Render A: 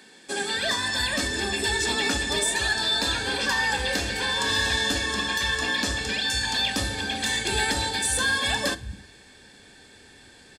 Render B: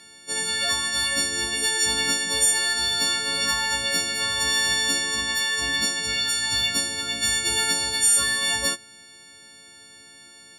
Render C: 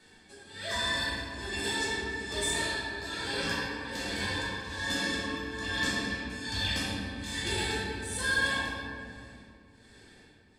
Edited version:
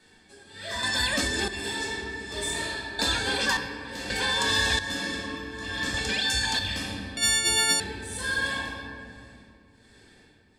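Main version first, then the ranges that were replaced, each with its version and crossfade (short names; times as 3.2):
C
0.83–1.48 from A
2.99–3.57 from A
4.1–4.79 from A
5.94–6.59 from A
7.17–7.8 from B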